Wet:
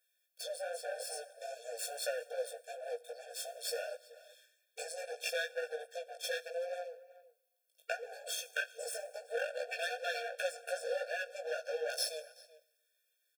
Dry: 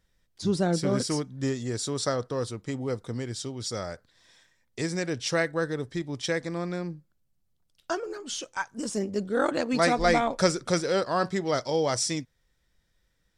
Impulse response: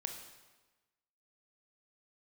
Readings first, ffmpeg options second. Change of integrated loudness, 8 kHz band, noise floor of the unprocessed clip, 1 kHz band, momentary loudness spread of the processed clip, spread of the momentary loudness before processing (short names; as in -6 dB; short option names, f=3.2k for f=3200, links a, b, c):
-11.0 dB, -9.0 dB, -72 dBFS, -14.5 dB, 10 LU, 10 LU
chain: -filter_complex "[0:a]highpass=69,afwtdn=0.0282,acrossover=split=4500[a][b];[a]tiltshelf=f=1.3k:g=-8[c];[b]aexciter=amount=4.5:drive=6.8:freq=8.7k[d];[c][d]amix=inputs=2:normalize=0,acompressor=threshold=-41dB:ratio=6,equalizer=f=650:w=1.5:g=-2.5,aeval=exprs='max(val(0),0)':c=same,flanger=delay=15.5:depth=4.1:speed=2.5,asuperstop=centerf=1000:order=8:qfactor=1.5,asplit=2[e][f];[f]adelay=379,volume=-18dB,highshelf=f=4k:g=-8.53[g];[e][g]amix=inputs=2:normalize=0,asplit=2[h][i];[1:a]atrim=start_sample=2205,highshelf=f=5.4k:g=9.5[j];[i][j]afir=irnorm=-1:irlink=0,volume=-14dB[k];[h][k]amix=inputs=2:normalize=0,afftfilt=real='re*eq(mod(floor(b*sr/1024/460),2),1)':imag='im*eq(mod(floor(b*sr/1024/460),2),1)':win_size=1024:overlap=0.75,volume=18dB"